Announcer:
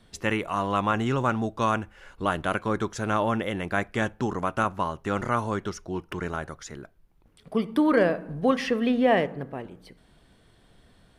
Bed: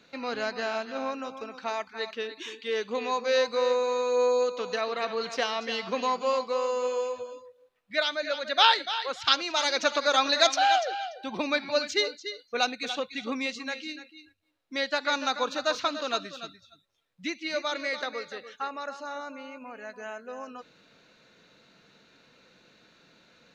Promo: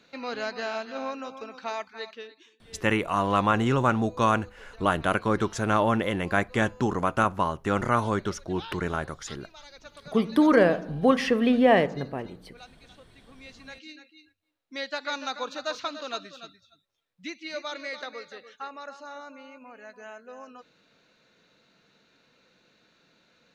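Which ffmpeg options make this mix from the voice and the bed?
ffmpeg -i stem1.wav -i stem2.wav -filter_complex "[0:a]adelay=2600,volume=2dB[link_01];[1:a]volume=17dB,afade=type=out:start_time=1.79:duration=0.71:silence=0.0841395,afade=type=in:start_time=13.32:duration=0.85:silence=0.125893[link_02];[link_01][link_02]amix=inputs=2:normalize=0" out.wav

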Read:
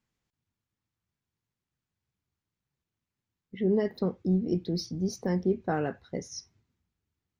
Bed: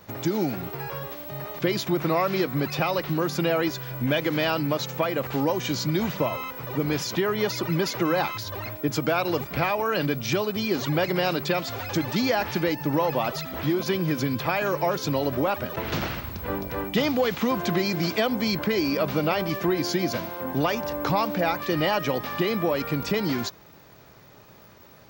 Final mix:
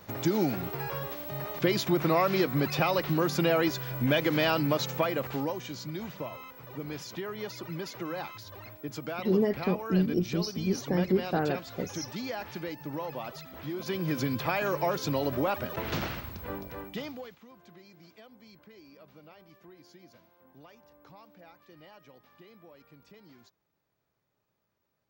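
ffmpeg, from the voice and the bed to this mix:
ffmpeg -i stem1.wav -i stem2.wav -filter_complex "[0:a]adelay=5650,volume=0.5dB[link_01];[1:a]volume=7dB,afade=type=out:start_time=4.9:duration=0.78:silence=0.281838,afade=type=in:start_time=13.7:duration=0.47:silence=0.375837,afade=type=out:start_time=15.94:duration=1.45:silence=0.0530884[link_02];[link_01][link_02]amix=inputs=2:normalize=0" out.wav

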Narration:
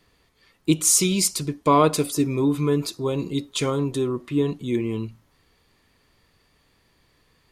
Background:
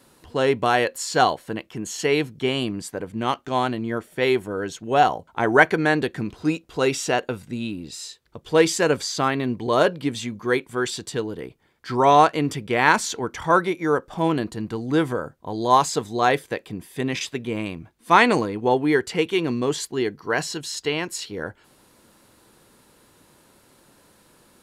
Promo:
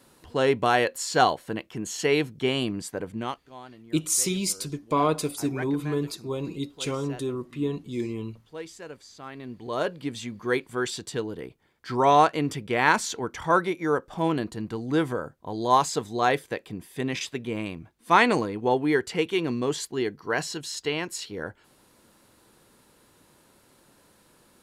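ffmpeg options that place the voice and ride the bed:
ffmpeg -i stem1.wav -i stem2.wav -filter_complex "[0:a]adelay=3250,volume=-6dB[link_01];[1:a]volume=16dB,afade=type=out:start_time=3.1:duration=0.32:silence=0.105925,afade=type=in:start_time=9.2:duration=1.38:silence=0.125893[link_02];[link_01][link_02]amix=inputs=2:normalize=0" out.wav

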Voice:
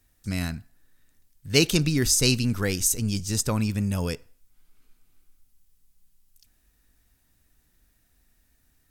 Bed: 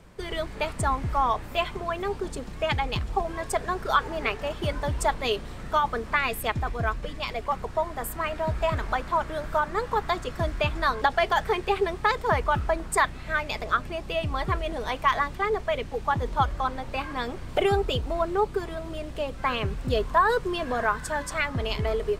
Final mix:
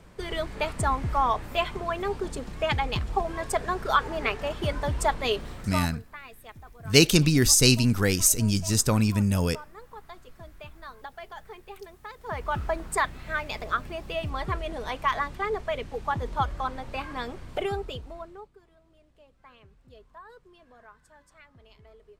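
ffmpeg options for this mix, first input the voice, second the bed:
ffmpeg -i stem1.wav -i stem2.wav -filter_complex "[0:a]adelay=5400,volume=2.5dB[link_01];[1:a]volume=16dB,afade=type=out:start_time=5.48:duration=0.46:silence=0.112202,afade=type=in:start_time=12.18:duration=0.43:silence=0.158489,afade=type=out:start_time=17.18:duration=1.32:silence=0.0630957[link_02];[link_01][link_02]amix=inputs=2:normalize=0" out.wav

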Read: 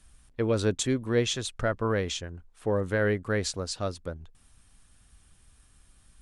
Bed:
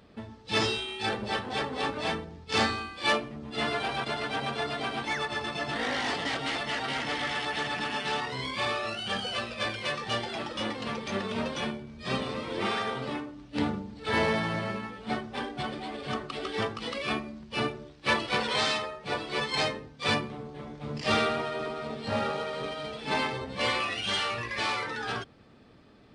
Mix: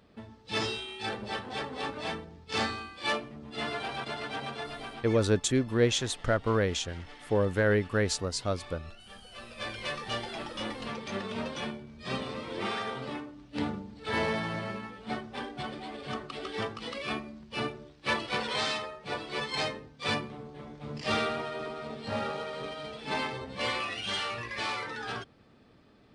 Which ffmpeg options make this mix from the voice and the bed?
ffmpeg -i stem1.wav -i stem2.wav -filter_complex "[0:a]adelay=4650,volume=0.5dB[link_01];[1:a]volume=10.5dB,afade=type=out:start_time=4.36:duration=1:silence=0.199526,afade=type=in:start_time=9.3:duration=0.51:silence=0.177828[link_02];[link_01][link_02]amix=inputs=2:normalize=0" out.wav

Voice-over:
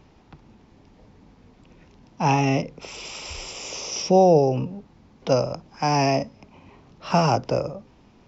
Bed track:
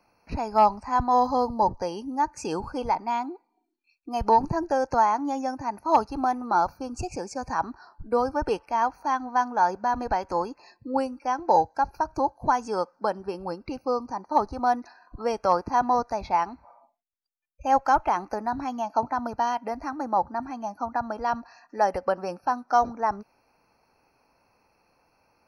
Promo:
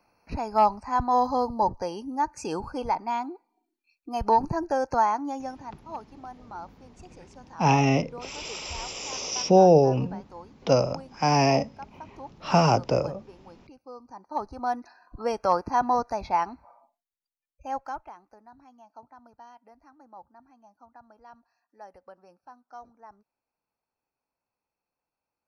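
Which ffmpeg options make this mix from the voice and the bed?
ffmpeg -i stem1.wav -i stem2.wav -filter_complex "[0:a]adelay=5400,volume=-0.5dB[link_01];[1:a]volume=15dB,afade=type=out:start_time=5.07:duration=0.79:silence=0.158489,afade=type=in:start_time=13.93:duration=1.34:silence=0.149624,afade=type=out:start_time=16.58:duration=1.58:silence=0.0749894[link_02];[link_01][link_02]amix=inputs=2:normalize=0" out.wav

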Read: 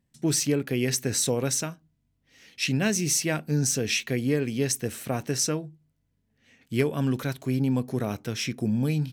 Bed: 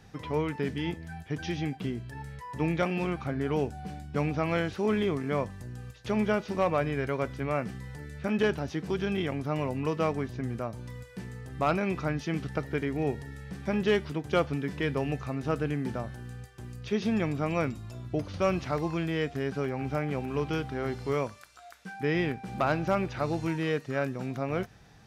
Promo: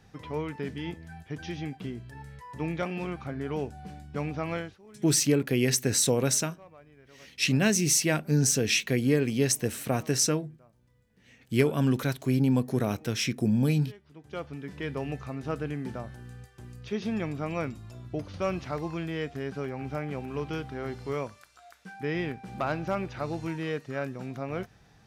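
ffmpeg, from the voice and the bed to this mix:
ffmpeg -i stem1.wav -i stem2.wav -filter_complex "[0:a]adelay=4800,volume=1dB[link_01];[1:a]volume=19dB,afade=type=out:start_time=4.53:duration=0.26:silence=0.0794328,afade=type=in:start_time=14.03:duration=1.01:silence=0.0749894[link_02];[link_01][link_02]amix=inputs=2:normalize=0" out.wav

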